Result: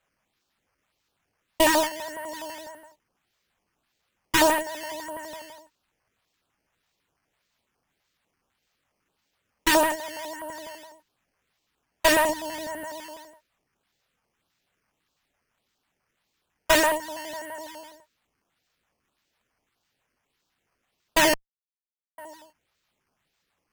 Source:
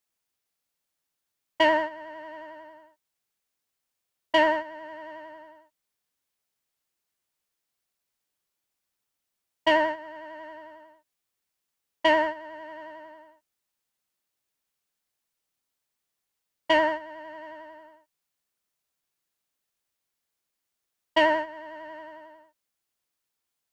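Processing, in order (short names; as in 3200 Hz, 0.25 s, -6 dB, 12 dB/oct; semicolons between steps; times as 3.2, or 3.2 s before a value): 12.29–12.85 low shelf 310 Hz +9.5 dB; decimation with a swept rate 8×, swing 100% 1.7 Hz; 21.34–22.18 mute; one-sided clip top -28 dBFS, bottom -15 dBFS; stepped notch 12 Hz 270–2000 Hz; gain +7.5 dB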